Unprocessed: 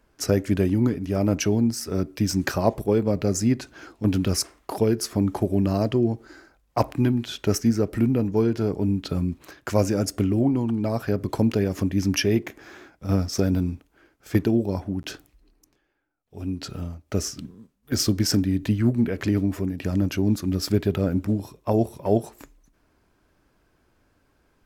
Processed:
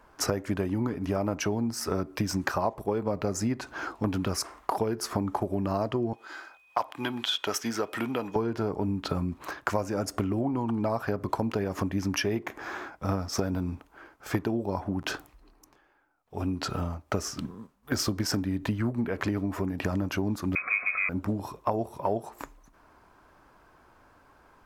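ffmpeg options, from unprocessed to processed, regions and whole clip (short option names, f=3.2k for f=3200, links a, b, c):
-filter_complex "[0:a]asettb=1/sr,asplit=3[a][b][c];[a]atrim=end=6.134[d];[b]atrim=start=6.13:end=8.36,asetpts=PTS-STARTPTS,afade=t=in:d=0.004:c=qsin,afade=t=out:st=2.226:d=0.004:c=qsin,highpass=f=1k:p=1,equalizer=f=3.3k:w=4.4:g=11,aeval=exprs='val(0)+0.000708*sin(2*PI*2500*n/s)':c=same[e];[c]atrim=start=8.356[f];[d][e]acrossfade=d=0.004:c1=hsin:c2=qsin[g];[g][f]acrossfade=d=0.004:c1=qsin:c2=hsin,asettb=1/sr,asplit=3[h][i][j];[h]atrim=end=20.554[k];[i]atrim=start=20.55:end=21.09,asetpts=PTS-STARTPTS,afade=t=in:d=0.004:c=qsin,afade=t=out:st=0.536:d=0.004:c=qsin,aeval=exprs='val(0)+0.5*0.0447*sgn(val(0))':c=same,lowpass=f=2.2k:t=q:w=0.5098,lowpass=f=2.2k:t=q:w=0.6013,lowpass=f=2.2k:t=q:w=0.9,lowpass=f=2.2k:t=q:w=2.563,afreqshift=-2600,asuperstop=centerf=890:order=8:qfactor=3.1[l];[j]atrim=start=21.086[m];[k][l]acrossfade=d=0.004:c1=hsin:c2=qsin[n];[n][m]acrossfade=d=0.004:c1=qsin:c2=hsin,equalizer=f=1k:t=o:w=1.5:g=13,acompressor=threshold=-27dB:ratio=6,volume=1.5dB"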